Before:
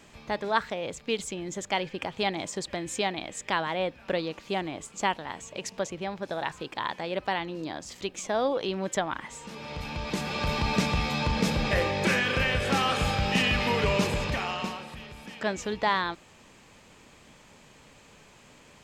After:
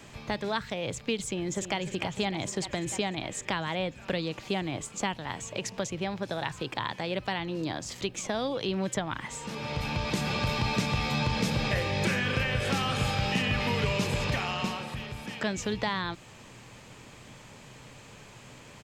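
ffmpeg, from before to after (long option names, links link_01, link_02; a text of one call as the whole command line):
ffmpeg -i in.wav -filter_complex "[0:a]asplit=2[link_01][link_02];[link_02]afade=type=in:start_time=1.25:duration=0.01,afade=type=out:start_time=1.77:duration=0.01,aecho=0:1:300|600|900|1200|1500|1800|2100|2400|2700|3000|3300|3600:0.266073|0.199554|0.149666|0.112249|0.084187|0.0631403|0.0473552|0.0355164|0.0266373|0.019978|0.0149835|0.0112376[link_03];[link_01][link_03]amix=inputs=2:normalize=0,equalizer=frequency=120:width=4:gain=10.5,acrossover=split=230|2100[link_04][link_05][link_06];[link_04]acompressor=threshold=-33dB:ratio=4[link_07];[link_05]acompressor=threshold=-36dB:ratio=4[link_08];[link_06]acompressor=threshold=-38dB:ratio=4[link_09];[link_07][link_08][link_09]amix=inputs=3:normalize=0,volume=4dB" out.wav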